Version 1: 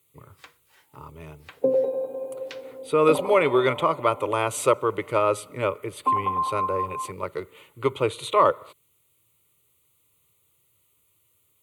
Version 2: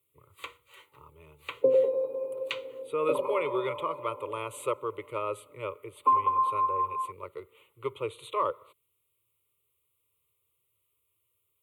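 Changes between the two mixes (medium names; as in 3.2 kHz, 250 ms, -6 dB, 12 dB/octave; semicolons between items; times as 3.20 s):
speech -9.0 dB; first sound +9.5 dB; master: add static phaser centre 1.1 kHz, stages 8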